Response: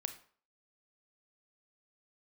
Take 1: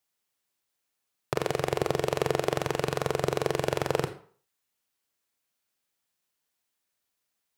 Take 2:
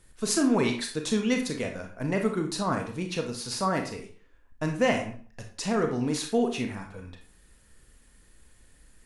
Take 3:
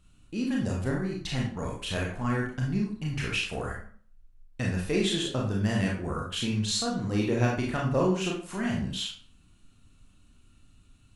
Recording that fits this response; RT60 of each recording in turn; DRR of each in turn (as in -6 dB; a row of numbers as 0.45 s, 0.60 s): 1; 0.50 s, 0.50 s, 0.50 s; 8.0 dB, 3.0 dB, -2.5 dB